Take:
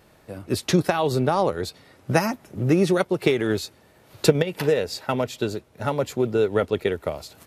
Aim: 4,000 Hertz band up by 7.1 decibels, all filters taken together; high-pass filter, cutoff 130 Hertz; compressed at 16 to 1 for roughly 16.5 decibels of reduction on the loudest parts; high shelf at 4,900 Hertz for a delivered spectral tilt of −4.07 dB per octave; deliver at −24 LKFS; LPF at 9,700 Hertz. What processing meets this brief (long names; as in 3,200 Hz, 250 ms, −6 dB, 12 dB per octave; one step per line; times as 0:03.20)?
high-pass filter 130 Hz
low-pass filter 9,700 Hz
parametric band 4,000 Hz +5 dB
high-shelf EQ 4,900 Hz +7.5 dB
downward compressor 16 to 1, threshold −26 dBFS
level +8 dB